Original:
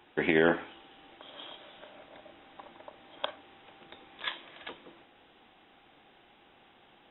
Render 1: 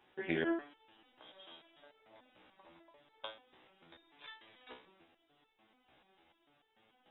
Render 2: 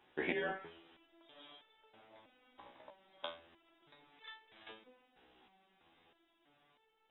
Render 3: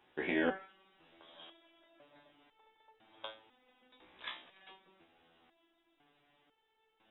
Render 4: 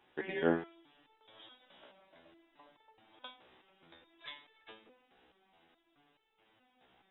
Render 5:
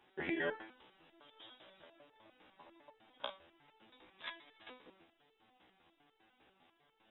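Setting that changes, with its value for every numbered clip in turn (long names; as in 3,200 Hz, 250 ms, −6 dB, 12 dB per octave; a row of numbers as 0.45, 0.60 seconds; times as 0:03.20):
step-sequenced resonator, speed: 6.8, 3.1, 2, 4.7, 10 Hertz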